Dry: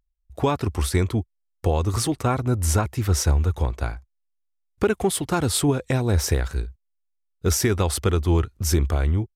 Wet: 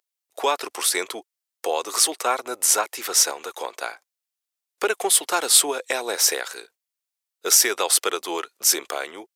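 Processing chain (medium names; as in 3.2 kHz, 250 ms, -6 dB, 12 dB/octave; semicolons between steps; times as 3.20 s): high-pass 450 Hz 24 dB/octave; treble shelf 2.2 kHz +9 dB; trim +1.5 dB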